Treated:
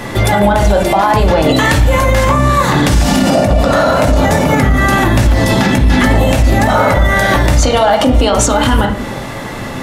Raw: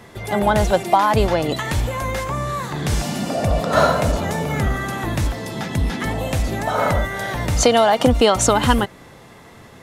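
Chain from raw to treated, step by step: compressor 5:1, threshold -25 dBFS, peak gain reduction 14 dB; reverb RT60 0.70 s, pre-delay 3 ms, DRR 1.5 dB; maximiser +19 dB; gain -1 dB

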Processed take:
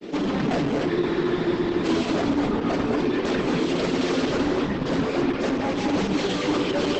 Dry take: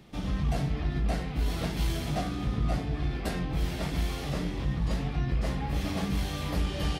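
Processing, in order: tracing distortion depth 0.056 ms; reverb removal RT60 2 s; HPF 260 Hz 24 dB/oct; in parallel at +3 dB: vocal rider within 4 dB 0.5 s; on the sum: resonant low shelf 580 Hz +8 dB, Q 1.5; grains 0.1 s, grains 20/s, spray 11 ms, pitch spread up and down by 0 st; hard clip -31 dBFS, distortion -5 dB; air absorption 74 m; non-linear reverb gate 0.27 s rising, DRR 2 dB; spectral freeze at 0.91, 0.93 s; gain +9 dB; Opus 10 kbps 48000 Hz

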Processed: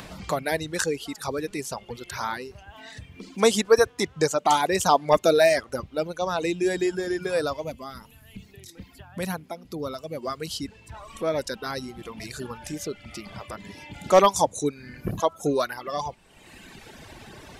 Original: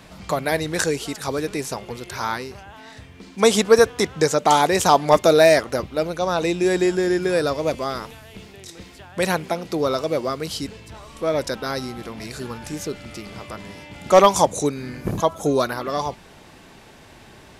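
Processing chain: reverb removal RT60 1.7 s; in parallel at -2 dB: upward compressor, threshold -23 dBFS; on the sum: spectral gain 7.63–10.22, 300–9900 Hz -7 dB; gain -8.5 dB

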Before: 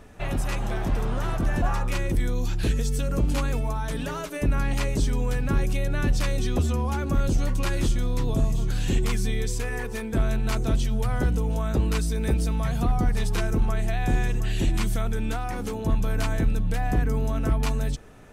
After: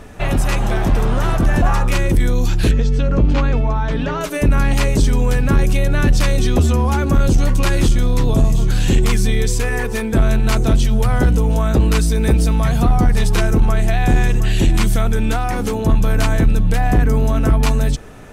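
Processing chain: in parallel at -11 dB: sine folder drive 4 dB, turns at -13.5 dBFS; 2.71–4.21 on the sum: air absorption 190 m; gain +6 dB

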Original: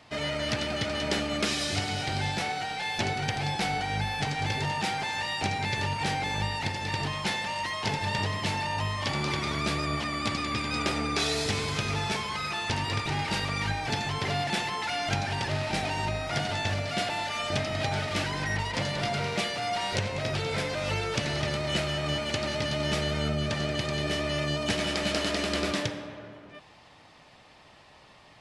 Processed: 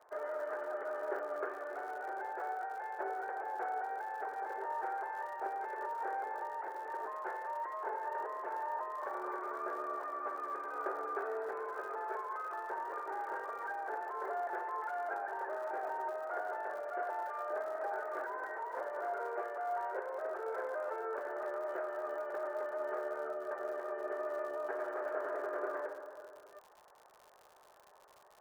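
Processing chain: Chebyshev band-pass 380–1600 Hz, order 4; crackle 120/s -44 dBFS; gain -4.5 dB

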